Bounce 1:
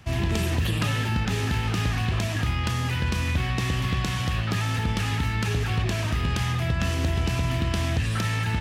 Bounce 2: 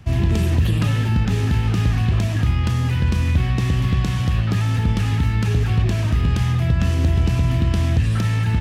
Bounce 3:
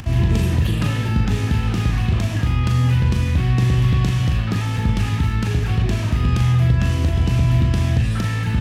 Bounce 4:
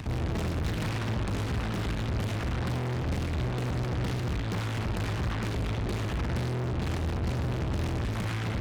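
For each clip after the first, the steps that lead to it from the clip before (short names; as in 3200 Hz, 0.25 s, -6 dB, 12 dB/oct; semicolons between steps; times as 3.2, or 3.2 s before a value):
low shelf 380 Hz +10 dB; gain -1.5 dB
upward compressor, threshold -26 dBFS; flutter echo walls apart 6.9 m, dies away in 0.33 s
tube stage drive 28 dB, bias 0.7; on a send at -8.5 dB: reverb, pre-delay 51 ms; on the sum: Doppler distortion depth 0.92 ms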